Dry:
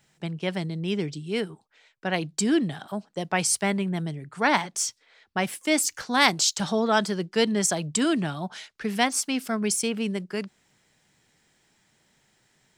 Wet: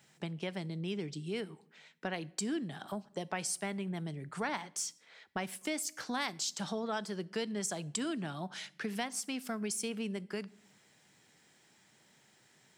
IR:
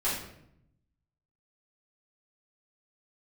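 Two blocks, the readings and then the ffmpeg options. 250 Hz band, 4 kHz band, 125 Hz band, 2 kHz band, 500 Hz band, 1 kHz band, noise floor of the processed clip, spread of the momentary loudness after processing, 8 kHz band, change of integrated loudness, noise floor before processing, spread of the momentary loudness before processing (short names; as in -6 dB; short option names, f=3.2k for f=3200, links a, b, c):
-11.5 dB, -12.5 dB, -10.0 dB, -13.5 dB, -11.5 dB, -13.5 dB, -67 dBFS, 7 LU, -11.5 dB, -12.0 dB, -67 dBFS, 11 LU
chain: -filter_complex "[0:a]highpass=120,acompressor=threshold=-38dB:ratio=3,asplit=2[a][b];[1:a]atrim=start_sample=2205,highshelf=f=8.3k:g=10.5[c];[b][c]afir=irnorm=-1:irlink=0,volume=-28dB[d];[a][d]amix=inputs=2:normalize=0"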